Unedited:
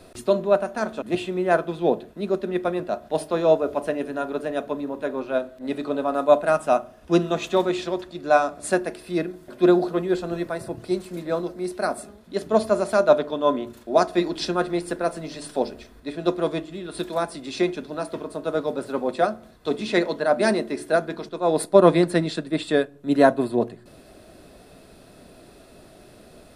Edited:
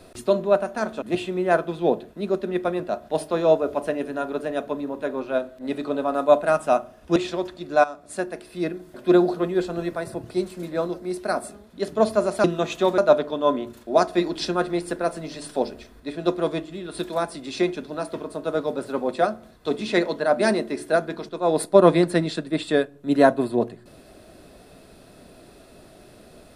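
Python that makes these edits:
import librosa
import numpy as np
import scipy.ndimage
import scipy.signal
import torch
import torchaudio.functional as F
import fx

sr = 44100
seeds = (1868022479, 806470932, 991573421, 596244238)

y = fx.edit(x, sr, fx.move(start_s=7.16, length_s=0.54, to_s=12.98),
    fx.fade_in_from(start_s=8.38, length_s=1.04, floor_db=-12.5), tone=tone)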